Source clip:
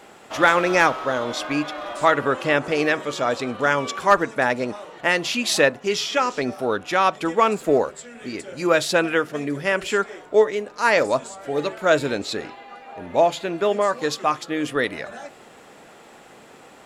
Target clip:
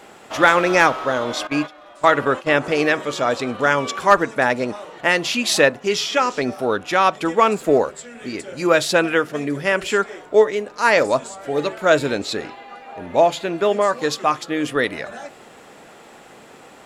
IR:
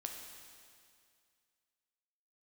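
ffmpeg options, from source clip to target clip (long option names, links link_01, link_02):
-filter_complex "[0:a]asettb=1/sr,asplit=3[link_01][link_02][link_03];[link_01]atrim=end=1.474[link_04];[link_02]atrim=start=1.47:end=2.58,asetpts=PTS-STARTPTS,afade=type=in:duration=0.004:curve=qsin,afade=type=out:start_time=1.106:duration=0.004:curve=qsin,agate=range=-15dB:threshold=-25dB:ratio=16:detection=peak[link_05];[link_03]atrim=start=2.576[link_06];[link_04][link_05]acrossfade=duration=0.004:curve1=hsin:curve2=qsin[link_07];[link_07][link_06]acrossfade=duration=0.004:curve1=qsin:curve2=hsin,volume=2.5dB"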